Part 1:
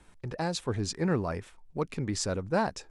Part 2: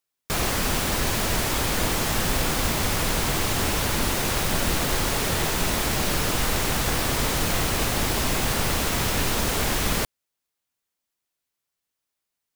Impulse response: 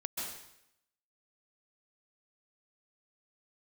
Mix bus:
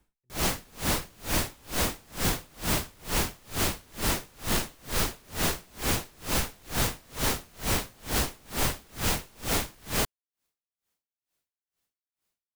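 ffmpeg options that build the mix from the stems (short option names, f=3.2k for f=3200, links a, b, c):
-filter_complex "[0:a]volume=-14dB[a];[1:a]acontrast=34,aeval=exprs='0.119*(abs(mod(val(0)/0.119+3,4)-2)-1)':c=same,volume=-2dB[b];[a][b]amix=inputs=2:normalize=0,lowshelf=f=490:g=4,aeval=exprs='val(0)*pow(10,-33*(0.5-0.5*cos(2*PI*2.2*n/s))/20)':c=same"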